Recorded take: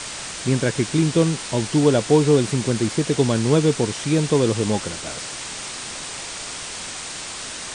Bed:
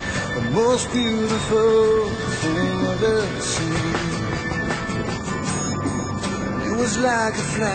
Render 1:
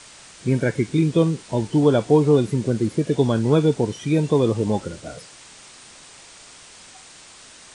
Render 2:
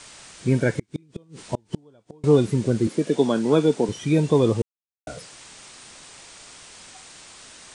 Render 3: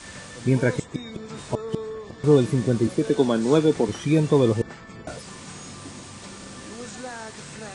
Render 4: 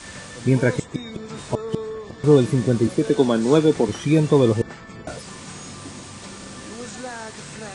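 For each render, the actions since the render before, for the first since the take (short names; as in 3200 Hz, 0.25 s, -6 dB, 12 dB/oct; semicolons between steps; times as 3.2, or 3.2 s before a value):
noise print and reduce 13 dB
0.71–2.24 flipped gate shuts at -12 dBFS, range -36 dB; 2.87–3.89 HPF 180 Hz 24 dB/oct; 4.62–5.07 mute
add bed -17 dB
gain +2.5 dB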